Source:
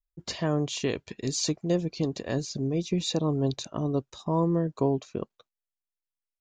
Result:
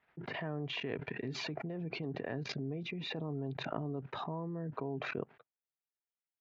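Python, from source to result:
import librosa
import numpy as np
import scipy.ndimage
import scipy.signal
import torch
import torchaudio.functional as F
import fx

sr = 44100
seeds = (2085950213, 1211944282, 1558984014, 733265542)

y = fx.level_steps(x, sr, step_db=19)
y = fx.cabinet(y, sr, low_hz=130.0, low_slope=24, high_hz=2100.0, hz=(200.0, 330.0, 540.0, 1100.0), db=(-9, -6, -7, -7))
y = fx.pre_swell(y, sr, db_per_s=21.0)
y = y * 10.0 ** (3.5 / 20.0)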